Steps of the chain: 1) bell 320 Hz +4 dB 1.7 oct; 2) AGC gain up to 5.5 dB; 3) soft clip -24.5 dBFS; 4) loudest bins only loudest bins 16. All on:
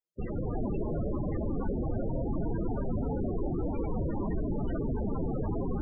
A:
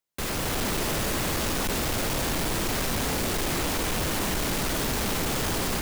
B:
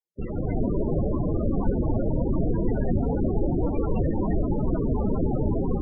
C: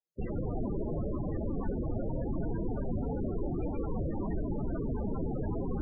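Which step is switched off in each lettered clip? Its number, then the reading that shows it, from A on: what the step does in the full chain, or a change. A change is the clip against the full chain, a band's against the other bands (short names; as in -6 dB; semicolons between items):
4, 2 kHz band +23.0 dB; 3, distortion -8 dB; 2, loudness change -2.0 LU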